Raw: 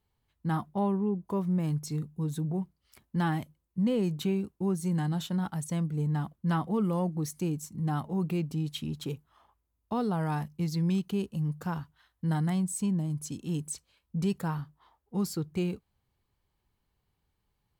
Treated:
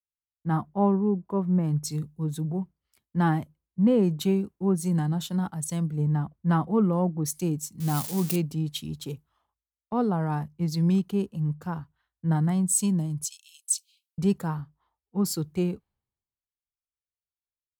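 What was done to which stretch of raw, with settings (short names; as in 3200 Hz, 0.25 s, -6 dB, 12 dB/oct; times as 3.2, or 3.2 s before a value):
7.8–8.36 switching spikes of -28 dBFS
13.24–14.18 steep high-pass 2400 Hz 72 dB/oct
whole clip: dynamic EQ 2500 Hz, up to -4 dB, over -49 dBFS, Q 0.89; three-band expander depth 100%; gain +4 dB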